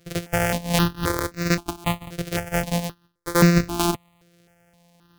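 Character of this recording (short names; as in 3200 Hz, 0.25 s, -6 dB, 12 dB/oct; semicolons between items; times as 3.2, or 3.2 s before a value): a buzz of ramps at a fixed pitch in blocks of 256 samples; tremolo saw up 0.54 Hz, depth 30%; notches that jump at a steady rate 3.8 Hz 250–3200 Hz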